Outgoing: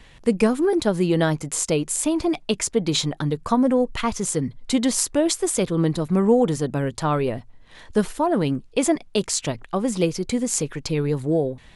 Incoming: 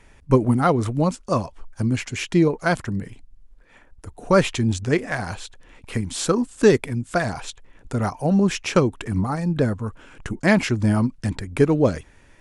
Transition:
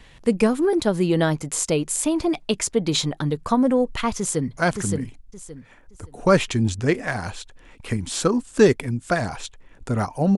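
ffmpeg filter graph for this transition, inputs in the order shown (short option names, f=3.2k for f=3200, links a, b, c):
-filter_complex "[0:a]apad=whole_dur=10.37,atrim=end=10.37,atrim=end=4.572[a];[1:a]atrim=start=2.608:end=8.41[b];[a][b]acrossfade=d=0.004:c1=hsin:c2=hsin,asplit=2[c][d];[d]afade=t=in:st=4.18:d=0.01,afade=t=out:st=4.57:d=0.01,aecho=0:1:570|1140|1710|2280:0.668344|0.167086|0.0417715|0.0104429[e];[c][e]amix=inputs=2:normalize=0"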